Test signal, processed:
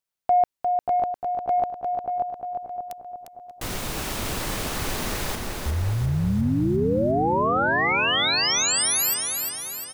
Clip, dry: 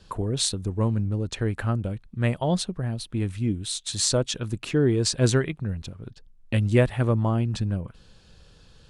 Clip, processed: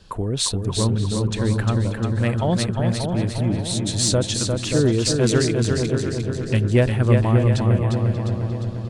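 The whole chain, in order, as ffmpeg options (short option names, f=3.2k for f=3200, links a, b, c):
-filter_complex "[0:a]asplit=2[a][b];[b]aecho=0:1:352|704|1056|1408|1760|2112|2464:0.562|0.292|0.152|0.0791|0.0411|0.0214|0.0111[c];[a][c]amix=inputs=2:normalize=0,acontrast=75,asplit=2[d][e];[e]adelay=584,lowpass=f=1.2k:p=1,volume=-5dB,asplit=2[f][g];[g]adelay=584,lowpass=f=1.2k:p=1,volume=0.46,asplit=2[h][i];[i]adelay=584,lowpass=f=1.2k:p=1,volume=0.46,asplit=2[j][k];[k]adelay=584,lowpass=f=1.2k:p=1,volume=0.46,asplit=2[l][m];[m]adelay=584,lowpass=f=1.2k:p=1,volume=0.46,asplit=2[n][o];[o]adelay=584,lowpass=f=1.2k:p=1,volume=0.46[p];[f][h][j][l][n][p]amix=inputs=6:normalize=0[q];[d][q]amix=inputs=2:normalize=0,volume=-4dB"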